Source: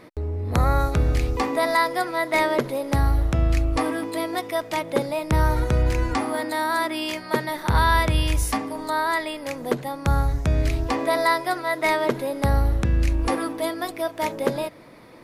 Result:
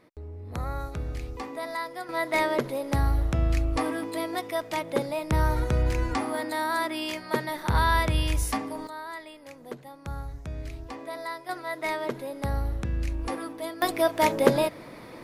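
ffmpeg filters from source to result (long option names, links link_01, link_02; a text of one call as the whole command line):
ffmpeg -i in.wav -af "asetnsamples=nb_out_samples=441:pad=0,asendcmd='2.09 volume volume -4dB;8.87 volume volume -15dB;11.49 volume volume -8.5dB;13.82 volume volume 3.5dB',volume=-12.5dB" out.wav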